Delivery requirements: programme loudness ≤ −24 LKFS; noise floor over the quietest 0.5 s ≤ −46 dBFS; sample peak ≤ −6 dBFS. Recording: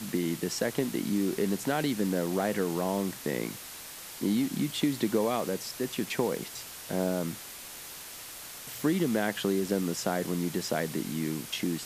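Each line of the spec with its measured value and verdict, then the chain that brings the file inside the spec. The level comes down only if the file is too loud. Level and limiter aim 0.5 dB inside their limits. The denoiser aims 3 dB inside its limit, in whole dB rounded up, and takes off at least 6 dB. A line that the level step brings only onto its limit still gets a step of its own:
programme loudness −31.0 LKFS: in spec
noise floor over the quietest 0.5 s −44 dBFS: out of spec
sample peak −14.0 dBFS: in spec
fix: broadband denoise 6 dB, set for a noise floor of −44 dBFS

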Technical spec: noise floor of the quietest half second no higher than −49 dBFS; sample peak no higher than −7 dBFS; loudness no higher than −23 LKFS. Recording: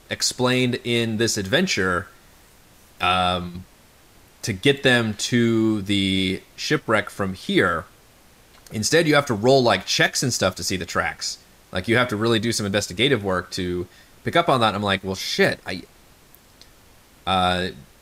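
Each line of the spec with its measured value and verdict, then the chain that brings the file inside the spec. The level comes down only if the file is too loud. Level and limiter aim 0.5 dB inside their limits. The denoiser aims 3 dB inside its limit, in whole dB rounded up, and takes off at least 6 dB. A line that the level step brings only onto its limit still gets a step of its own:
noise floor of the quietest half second −52 dBFS: in spec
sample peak −5.5 dBFS: out of spec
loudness −21.0 LKFS: out of spec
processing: level −2.5 dB

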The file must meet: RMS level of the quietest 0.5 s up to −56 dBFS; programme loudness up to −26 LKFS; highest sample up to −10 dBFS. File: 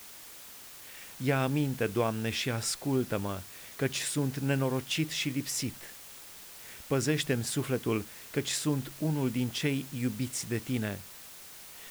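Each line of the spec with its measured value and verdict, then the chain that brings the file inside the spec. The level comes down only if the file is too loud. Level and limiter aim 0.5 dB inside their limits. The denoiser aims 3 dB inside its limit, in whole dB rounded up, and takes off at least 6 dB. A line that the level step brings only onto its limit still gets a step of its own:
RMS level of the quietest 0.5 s −48 dBFS: out of spec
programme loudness −31.5 LKFS: in spec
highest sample −15.5 dBFS: in spec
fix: broadband denoise 11 dB, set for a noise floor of −48 dBFS

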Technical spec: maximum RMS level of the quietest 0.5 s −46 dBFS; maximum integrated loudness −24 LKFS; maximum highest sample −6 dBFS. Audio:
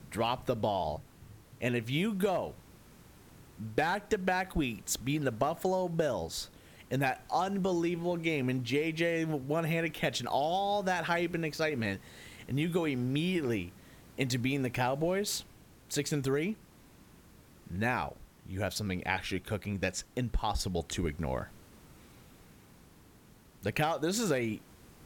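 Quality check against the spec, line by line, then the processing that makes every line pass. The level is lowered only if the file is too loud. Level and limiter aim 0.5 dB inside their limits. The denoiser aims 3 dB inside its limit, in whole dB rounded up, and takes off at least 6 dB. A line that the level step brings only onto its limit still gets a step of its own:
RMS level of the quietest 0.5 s −58 dBFS: in spec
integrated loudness −32.5 LKFS: in spec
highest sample −14.5 dBFS: in spec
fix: no processing needed

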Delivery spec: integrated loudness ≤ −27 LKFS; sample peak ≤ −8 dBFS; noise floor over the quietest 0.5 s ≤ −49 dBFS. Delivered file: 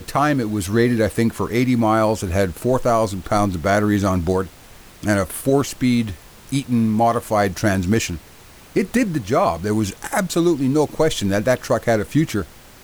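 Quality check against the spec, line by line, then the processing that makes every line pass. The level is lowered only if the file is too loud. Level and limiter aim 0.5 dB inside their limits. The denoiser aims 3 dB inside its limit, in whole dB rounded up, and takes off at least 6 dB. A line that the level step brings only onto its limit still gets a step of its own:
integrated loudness −19.5 LKFS: out of spec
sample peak −5.0 dBFS: out of spec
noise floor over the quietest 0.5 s −44 dBFS: out of spec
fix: level −8 dB

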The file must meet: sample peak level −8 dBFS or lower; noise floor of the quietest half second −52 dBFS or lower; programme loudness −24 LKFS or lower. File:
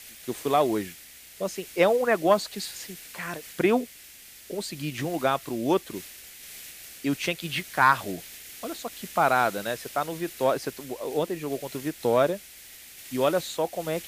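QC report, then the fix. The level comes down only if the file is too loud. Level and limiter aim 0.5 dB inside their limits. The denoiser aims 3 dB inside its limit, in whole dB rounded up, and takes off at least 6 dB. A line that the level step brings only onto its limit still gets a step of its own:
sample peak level −7.0 dBFS: out of spec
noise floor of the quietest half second −48 dBFS: out of spec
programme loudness −27.0 LKFS: in spec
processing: broadband denoise 7 dB, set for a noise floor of −48 dBFS
brickwall limiter −8.5 dBFS

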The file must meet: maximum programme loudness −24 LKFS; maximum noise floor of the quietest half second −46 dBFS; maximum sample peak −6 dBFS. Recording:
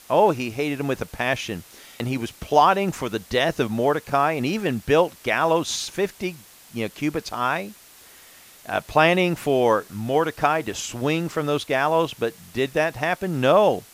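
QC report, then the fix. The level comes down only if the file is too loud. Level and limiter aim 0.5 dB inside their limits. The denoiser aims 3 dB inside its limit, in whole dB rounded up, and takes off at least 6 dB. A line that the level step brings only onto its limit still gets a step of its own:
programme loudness −22.5 LKFS: out of spec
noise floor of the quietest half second −49 dBFS: in spec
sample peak −3.5 dBFS: out of spec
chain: level −2 dB
brickwall limiter −6.5 dBFS

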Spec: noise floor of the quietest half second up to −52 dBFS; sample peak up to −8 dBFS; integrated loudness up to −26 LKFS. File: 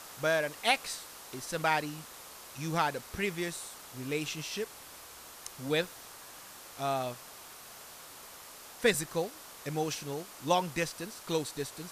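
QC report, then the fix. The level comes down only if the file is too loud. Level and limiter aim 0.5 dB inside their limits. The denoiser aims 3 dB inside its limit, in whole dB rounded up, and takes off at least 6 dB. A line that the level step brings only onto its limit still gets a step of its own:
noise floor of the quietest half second −50 dBFS: out of spec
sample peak −11.0 dBFS: in spec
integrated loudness −33.5 LKFS: in spec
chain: broadband denoise 6 dB, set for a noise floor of −50 dBFS

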